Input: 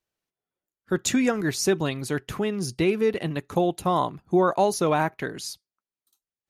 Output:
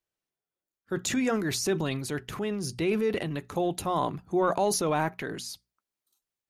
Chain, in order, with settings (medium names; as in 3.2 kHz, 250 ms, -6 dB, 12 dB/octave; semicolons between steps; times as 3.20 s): transient shaper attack -2 dB, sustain +8 dB; hum notches 60/120/180/240 Hz; trim -4.5 dB